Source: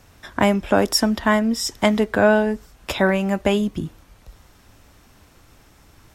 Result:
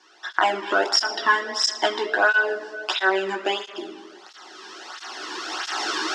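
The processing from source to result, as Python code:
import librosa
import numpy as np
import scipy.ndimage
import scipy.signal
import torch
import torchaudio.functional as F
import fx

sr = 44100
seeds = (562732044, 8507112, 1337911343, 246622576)

y = fx.recorder_agc(x, sr, target_db=-11.0, rise_db_per_s=13.0, max_gain_db=30)
y = fx.tilt_eq(y, sr, slope=4.0)
y = fx.quant_float(y, sr, bits=2)
y = fx.cabinet(y, sr, low_hz=320.0, low_slope=24, high_hz=4700.0, hz=(340.0, 540.0, 780.0, 1400.0, 2300.0, 3800.0), db=(9, -10, 4, 4, -10, -4))
y = fx.room_early_taps(y, sr, ms=(16, 26), db=(-5.5, -9.5))
y = fx.room_shoebox(y, sr, seeds[0], volume_m3=3100.0, walls='mixed', distance_m=1.0)
y = fx.flanger_cancel(y, sr, hz=1.5, depth_ms=1.6)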